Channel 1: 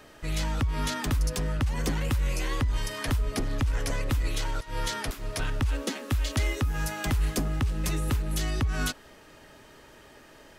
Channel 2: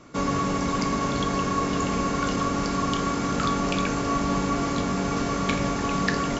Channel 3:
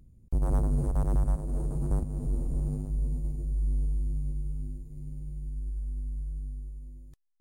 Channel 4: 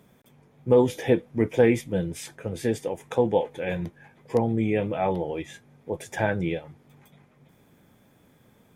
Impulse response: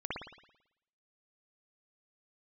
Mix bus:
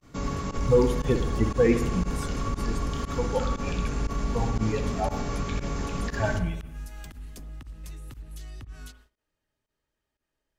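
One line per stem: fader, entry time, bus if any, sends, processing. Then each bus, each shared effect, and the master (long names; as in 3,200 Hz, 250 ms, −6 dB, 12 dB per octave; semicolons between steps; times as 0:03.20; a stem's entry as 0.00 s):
−16.5 dB, 0.00 s, bus A, send −11 dB, downward compressor 4 to 1, threshold −31 dBFS, peak gain reduction 8 dB
−12.0 dB, 0.00 s, bus A, send −6 dB, low-shelf EQ 160 Hz +7 dB
+0.5 dB, 0.25 s, bus A, no send, tuned comb filter 83 Hz, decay 0.19 s, harmonics all, mix 90%
−1.0 dB, 0.00 s, no bus, send −9 dB, spectral dynamics exaggerated over time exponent 3
bus A: 0.0 dB, high-shelf EQ 2,500 Hz +6 dB; brickwall limiter −27 dBFS, peak gain reduction 9 dB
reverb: on, RT60 0.80 s, pre-delay 55 ms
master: noise gate −59 dBFS, range −20 dB; low-shelf EQ 120 Hz +10.5 dB; fake sidechain pumping 118 BPM, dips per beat 1, −22 dB, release 62 ms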